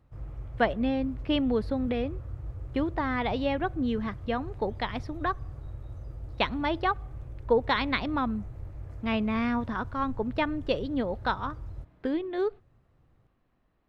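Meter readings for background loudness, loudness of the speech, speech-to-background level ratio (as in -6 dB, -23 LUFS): -42.0 LUFS, -30.0 LUFS, 12.0 dB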